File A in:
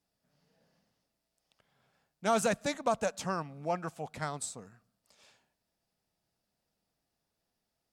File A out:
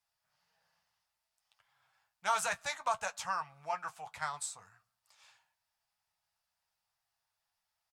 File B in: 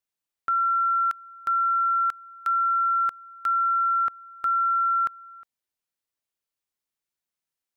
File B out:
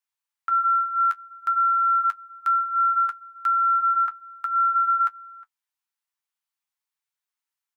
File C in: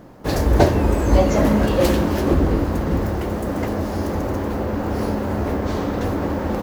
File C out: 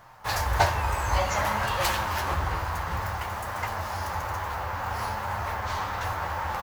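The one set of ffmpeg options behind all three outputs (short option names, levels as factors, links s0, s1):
-af "firequalizer=gain_entry='entry(110,0);entry(250,-18);entry(870,12);entry(3900,9)':delay=0.05:min_phase=1,flanger=delay=8.6:depth=3.5:regen=-40:speed=0.56:shape=sinusoidal,volume=0.501"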